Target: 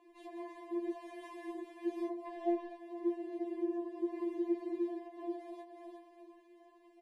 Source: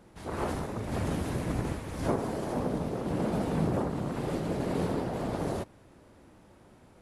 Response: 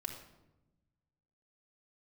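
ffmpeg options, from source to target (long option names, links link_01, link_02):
-filter_complex "[0:a]asettb=1/sr,asplit=3[link_01][link_02][link_03];[link_01]atrim=end=0.974[link_04];[link_02]atrim=start=0.97:end=1.53,asetpts=PTS-STARTPTS,afade=type=in:duration=0.004:curve=qsin,afade=type=out:start_time=0.556:duration=0.004:curve=qsin,equalizer=frequency=180:width=1:gain=-13[link_05];[link_03]atrim=start=1.526[link_06];[link_04][link_05]acrossfade=duration=0.004:curve1=hsin:curve2=qsin[link_07];[link_07][link_06]acrossfade=duration=0.004:curve1=qsin:curve2=hsin,aecho=1:1:360|720|1080:0.2|0.0638|0.0204,asettb=1/sr,asplit=3[link_08][link_09][link_10];[link_08]atrim=end=4.204[link_11];[link_09]atrim=start=4.2:end=5.08,asetpts=PTS-STARTPTS,afade=type=in:duration=0.004:curve=qsin,afade=type=out:start_time=0.876:duration=0.004:curve=qsin,acontrast=81[link_12];[link_10]atrim=start=5.076[link_13];[link_11][link_12]acrossfade=duration=0.004:curve1=hsin:curve2=qsin[link_14];[link_14][link_13]acrossfade=duration=0.004:curve1=qsin:curve2=hsin,acrossover=split=170 3200:gain=0.126 1 0.224[link_15][link_16][link_17];[link_15][link_16][link_17]amix=inputs=3:normalize=0,asplit=3[link_18][link_19][link_20];[link_18]afade=type=out:start_time=2.25:duration=0.02[link_21];[link_19]asplit=2[link_22][link_23];[link_23]highpass=frequency=720:poles=1,volume=20dB,asoftclip=type=tanh:threshold=-19.5dB[link_24];[link_22][link_24]amix=inputs=2:normalize=0,lowpass=frequency=2600:poles=1,volume=-6dB,afade=type=in:start_time=2.25:duration=0.02,afade=type=out:start_time=2.76:duration=0.02[link_25];[link_20]afade=type=in:start_time=2.76:duration=0.02[link_26];[link_21][link_25][link_26]amix=inputs=3:normalize=0,acompressor=threshold=-40dB:ratio=16,asuperstop=centerf=1300:order=8:qfactor=3.9,afwtdn=0.0282,afftfilt=real='re*4*eq(mod(b,16),0)':imag='im*4*eq(mod(b,16),0)':win_size=2048:overlap=0.75,volume=15.5dB"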